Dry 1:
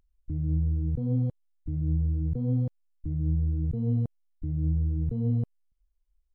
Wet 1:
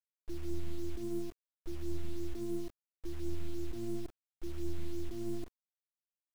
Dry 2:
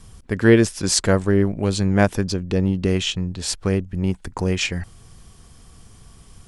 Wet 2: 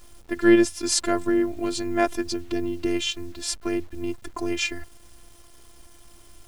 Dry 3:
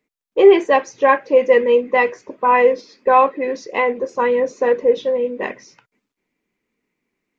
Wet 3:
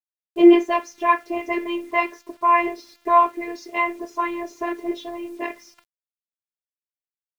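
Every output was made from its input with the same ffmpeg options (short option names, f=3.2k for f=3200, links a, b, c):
-af "bandreject=f=50:t=h:w=6,bandreject=f=100:t=h:w=6,afftfilt=real='hypot(re,im)*cos(PI*b)':imag='0':win_size=512:overlap=0.75,acrusher=bits=8:mix=0:aa=0.000001"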